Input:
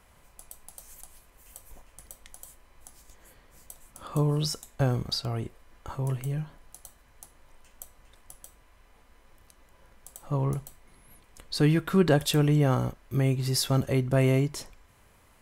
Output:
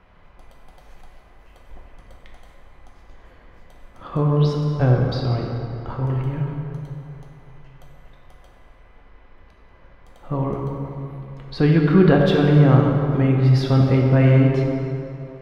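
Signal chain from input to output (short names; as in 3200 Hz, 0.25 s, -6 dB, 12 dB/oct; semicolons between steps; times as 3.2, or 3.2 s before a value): air absorption 300 m; plate-style reverb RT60 2.9 s, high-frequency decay 0.6×, DRR -0.5 dB; gain +6 dB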